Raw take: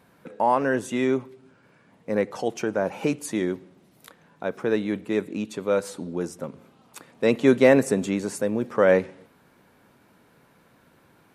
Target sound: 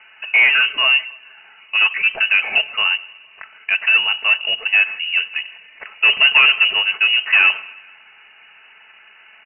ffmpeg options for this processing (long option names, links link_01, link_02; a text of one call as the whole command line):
ffmpeg -i in.wav -filter_complex "[0:a]aecho=1:1:4.5:0.44,asplit=2[link_01][link_02];[link_02]highpass=frequency=720:poles=1,volume=23dB,asoftclip=type=tanh:threshold=-3dB[link_03];[link_01][link_03]amix=inputs=2:normalize=0,lowpass=frequency=1600:poles=1,volume=-6dB,lowpass=frequency=2600:width_type=q:width=0.5098,lowpass=frequency=2600:width_type=q:width=0.6013,lowpass=frequency=2600:width_type=q:width=0.9,lowpass=frequency=2600:width_type=q:width=2.563,afreqshift=-3100,asplit=2[link_04][link_05];[link_05]aecho=0:1:176|352|528:0.0631|0.0341|0.0184[link_06];[link_04][link_06]amix=inputs=2:normalize=0,atempo=1.2" out.wav